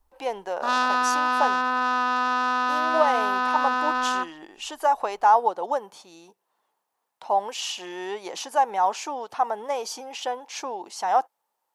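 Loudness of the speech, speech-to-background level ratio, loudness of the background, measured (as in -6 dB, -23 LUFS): -27.0 LUFS, -3.5 dB, -23.5 LUFS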